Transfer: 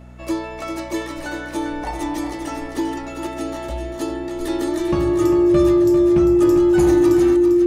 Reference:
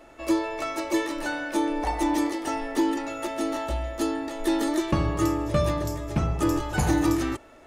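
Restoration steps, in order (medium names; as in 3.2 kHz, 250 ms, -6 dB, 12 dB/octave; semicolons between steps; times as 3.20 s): de-hum 61.4 Hz, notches 4; band-stop 350 Hz, Q 30; inverse comb 397 ms -8.5 dB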